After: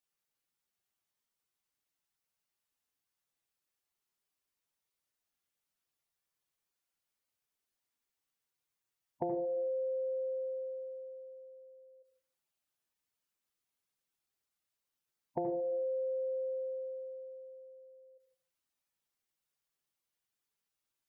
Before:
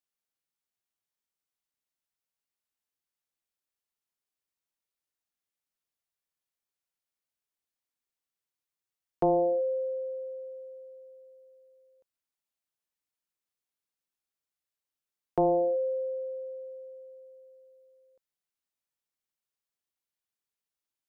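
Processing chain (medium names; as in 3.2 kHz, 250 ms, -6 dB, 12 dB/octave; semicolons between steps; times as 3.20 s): spectral gate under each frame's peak -10 dB strong; compression 6:1, threshold -38 dBFS, peak gain reduction 14.5 dB; on a send: reverberation RT60 0.40 s, pre-delay 71 ms, DRR 6 dB; on the sum: trim +3 dB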